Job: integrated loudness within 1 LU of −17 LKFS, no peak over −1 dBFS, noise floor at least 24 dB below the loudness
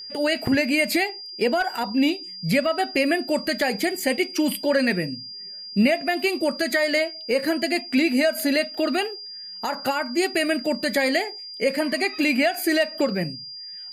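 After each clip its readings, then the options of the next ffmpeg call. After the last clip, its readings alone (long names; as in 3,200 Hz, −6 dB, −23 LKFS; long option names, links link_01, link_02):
interfering tone 4,800 Hz; level of the tone −35 dBFS; integrated loudness −23.0 LKFS; sample peak −9.5 dBFS; target loudness −17.0 LKFS
→ -af "bandreject=frequency=4800:width=30"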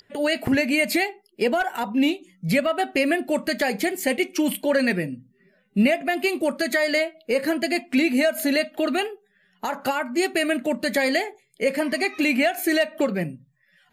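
interfering tone none found; integrated loudness −23.0 LKFS; sample peak −9.5 dBFS; target loudness −17.0 LKFS
→ -af "volume=6dB"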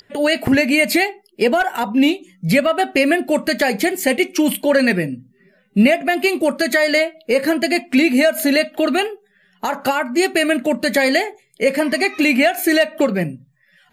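integrated loudness −17.0 LKFS; sample peak −3.5 dBFS; background noise floor −58 dBFS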